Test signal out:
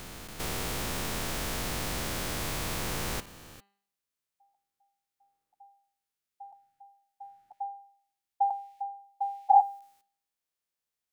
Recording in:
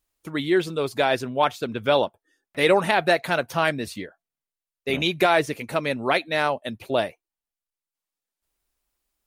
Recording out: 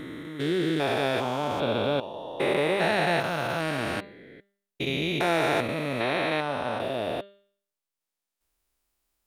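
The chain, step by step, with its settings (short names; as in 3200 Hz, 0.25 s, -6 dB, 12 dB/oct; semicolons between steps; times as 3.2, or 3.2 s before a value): stepped spectrum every 0.4 s; de-hum 199.5 Hz, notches 23; gain +2.5 dB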